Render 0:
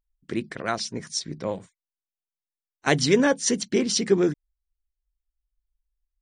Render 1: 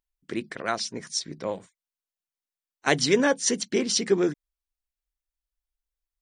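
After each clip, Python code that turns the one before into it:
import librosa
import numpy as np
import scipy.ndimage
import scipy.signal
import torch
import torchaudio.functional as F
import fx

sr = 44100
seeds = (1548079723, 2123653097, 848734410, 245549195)

y = fx.low_shelf(x, sr, hz=170.0, db=-10.5)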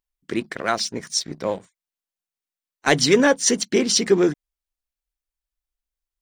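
y = fx.leveller(x, sr, passes=1)
y = y * librosa.db_to_amplitude(2.0)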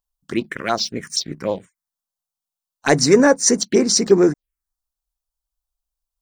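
y = fx.env_phaser(x, sr, low_hz=350.0, high_hz=3200.0, full_db=-16.5)
y = y * librosa.db_to_amplitude(4.0)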